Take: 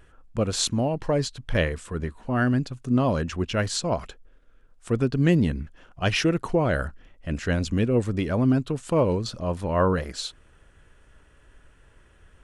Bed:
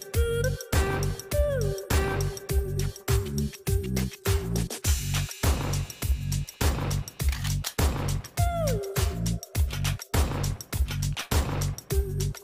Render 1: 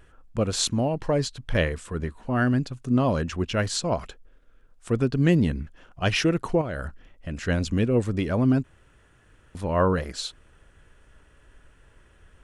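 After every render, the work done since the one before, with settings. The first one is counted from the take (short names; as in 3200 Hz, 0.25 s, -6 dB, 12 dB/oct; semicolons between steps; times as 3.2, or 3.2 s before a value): 6.61–7.48 compressor, threshold -27 dBFS; 8.64–9.55 room tone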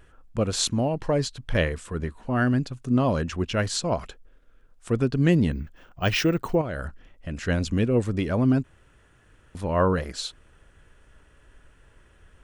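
5.52–6.55 careless resampling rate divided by 2×, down filtered, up hold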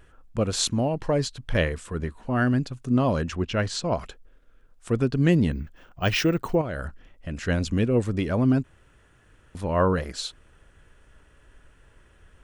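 3.35–3.93 air absorption 56 m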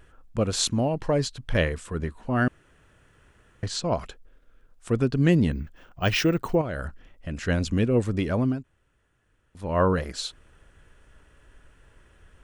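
2.48–3.63 room tone; 8.28–9.85 dip -11.5 dB, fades 0.30 s equal-power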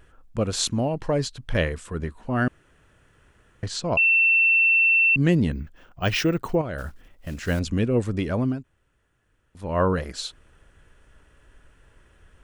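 3.97–5.16 bleep 2690 Hz -15 dBFS; 6.78–7.6 block floating point 5-bit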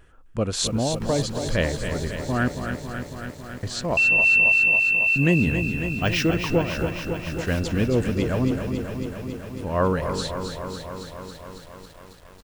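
frequency-shifting echo 0.259 s, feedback 50%, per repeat -51 Hz, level -12 dB; lo-fi delay 0.275 s, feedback 80%, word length 8-bit, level -8 dB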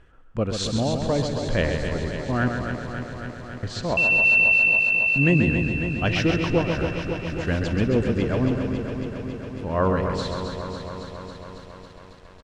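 air absorption 96 m; echo 0.133 s -6.5 dB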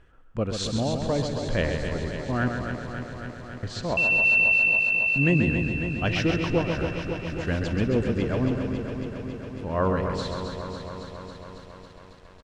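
gain -2.5 dB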